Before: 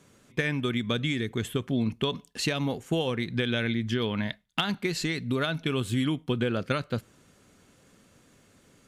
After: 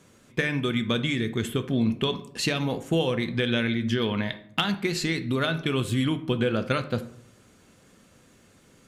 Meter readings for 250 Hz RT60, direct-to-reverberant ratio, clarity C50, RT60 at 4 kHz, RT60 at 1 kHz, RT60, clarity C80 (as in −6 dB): 0.80 s, 8.5 dB, 13.5 dB, 0.35 s, 0.65 s, 0.70 s, 17.0 dB